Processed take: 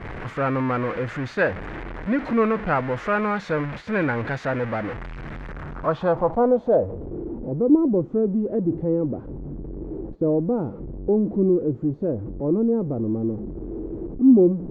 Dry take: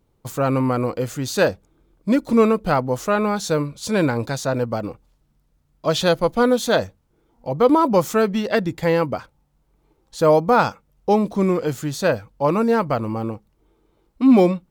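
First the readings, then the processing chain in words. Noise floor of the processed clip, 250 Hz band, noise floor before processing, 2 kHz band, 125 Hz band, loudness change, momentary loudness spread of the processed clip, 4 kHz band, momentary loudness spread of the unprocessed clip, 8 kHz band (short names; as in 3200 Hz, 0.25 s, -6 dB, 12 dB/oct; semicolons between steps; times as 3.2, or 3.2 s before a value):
-39 dBFS, -1.0 dB, -65 dBFS, -2.0 dB, -2.0 dB, -3.0 dB, 15 LU, under -15 dB, 12 LU, under -20 dB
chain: zero-crossing step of -20.5 dBFS; low-pass sweep 1900 Hz -> 350 Hz, 5.43–7.24; gate -29 dBFS, range -7 dB; gain -7 dB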